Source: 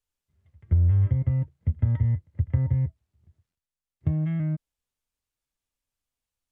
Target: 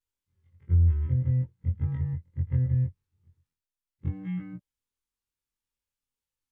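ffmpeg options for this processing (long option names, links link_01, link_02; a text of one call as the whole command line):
ffmpeg -i in.wav -af "afftfilt=real='re':imag='-im':win_size=2048:overlap=0.75,asuperstop=centerf=670:order=8:qfactor=3.3" out.wav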